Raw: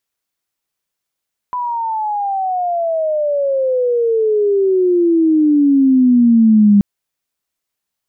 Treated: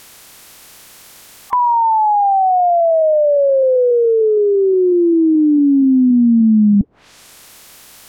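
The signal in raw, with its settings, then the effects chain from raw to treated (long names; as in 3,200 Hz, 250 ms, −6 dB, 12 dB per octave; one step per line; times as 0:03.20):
glide logarithmic 1,000 Hz → 200 Hz −17.5 dBFS → −5.5 dBFS 5.28 s
spectral magnitudes quantised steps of 30 dB
treble cut that deepens with the level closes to 320 Hz, closed at −12.5 dBFS
envelope flattener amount 70%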